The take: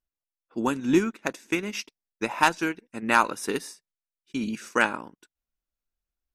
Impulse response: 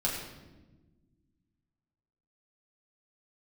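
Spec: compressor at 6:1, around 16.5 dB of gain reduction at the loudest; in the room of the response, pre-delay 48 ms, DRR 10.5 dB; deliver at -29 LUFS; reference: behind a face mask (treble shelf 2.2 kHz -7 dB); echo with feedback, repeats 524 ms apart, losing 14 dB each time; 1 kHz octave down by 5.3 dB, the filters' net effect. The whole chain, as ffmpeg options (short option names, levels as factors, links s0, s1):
-filter_complex "[0:a]equalizer=f=1000:t=o:g=-5,acompressor=threshold=0.0178:ratio=6,aecho=1:1:524|1048:0.2|0.0399,asplit=2[s0][s1];[1:a]atrim=start_sample=2205,adelay=48[s2];[s1][s2]afir=irnorm=-1:irlink=0,volume=0.133[s3];[s0][s3]amix=inputs=2:normalize=0,highshelf=f=2200:g=-7,volume=3.98"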